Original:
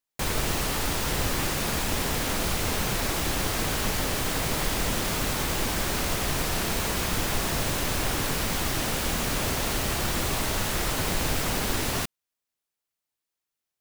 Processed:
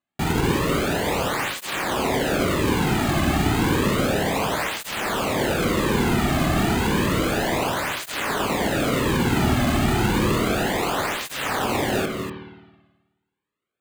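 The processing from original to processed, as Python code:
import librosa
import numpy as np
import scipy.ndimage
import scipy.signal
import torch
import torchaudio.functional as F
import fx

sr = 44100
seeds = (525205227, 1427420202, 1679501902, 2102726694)

y = fx.lowpass(x, sr, hz=3500.0, slope=6)
y = fx.low_shelf(y, sr, hz=400.0, db=5.5)
y = np.repeat(y[::8], 8)[:len(y)]
y = y + 10.0 ** (-8.5 / 20.0) * np.pad(y, (int(241 * sr / 1000.0), 0))[:len(y)]
y = fx.rev_spring(y, sr, rt60_s=1.2, pass_ms=(53,), chirp_ms=60, drr_db=4.0)
y = fx.flanger_cancel(y, sr, hz=0.31, depth_ms=2.2)
y = y * librosa.db_to_amplitude(7.0)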